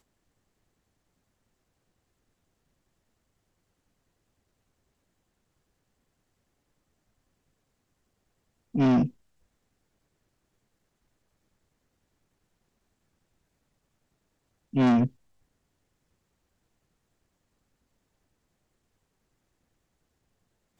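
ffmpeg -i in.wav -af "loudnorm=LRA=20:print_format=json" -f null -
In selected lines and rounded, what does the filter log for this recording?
"input_i" : "-25.0",
"input_tp" : "-18.5",
"input_lra" : "9.0",
"input_thresh" : "-35.6",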